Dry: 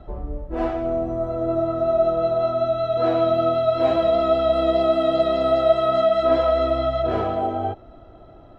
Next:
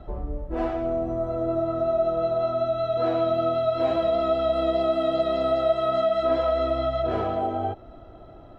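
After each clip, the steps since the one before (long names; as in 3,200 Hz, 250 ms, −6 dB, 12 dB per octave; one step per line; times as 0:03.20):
downward compressor 1.5 to 1, threshold −27 dBFS, peak gain reduction 6 dB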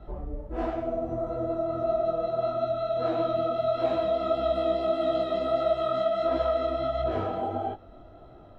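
micro pitch shift up and down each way 54 cents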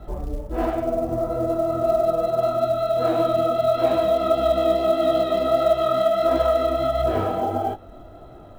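floating-point word with a short mantissa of 4 bits
level +6.5 dB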